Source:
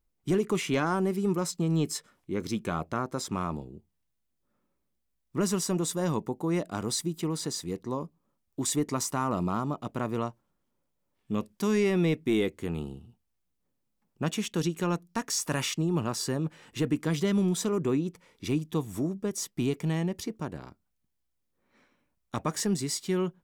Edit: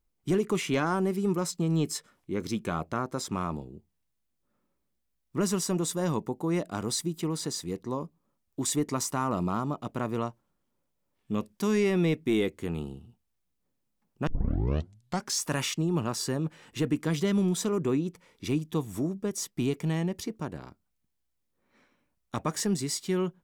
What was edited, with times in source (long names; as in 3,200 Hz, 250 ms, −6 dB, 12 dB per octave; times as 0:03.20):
0:14.27: tape start 1.12 s